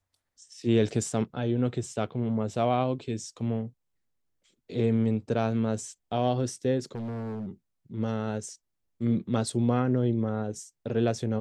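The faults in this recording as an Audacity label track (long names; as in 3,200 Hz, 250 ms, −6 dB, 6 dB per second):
6.950000	7.470000	clipping −31.5 dBFS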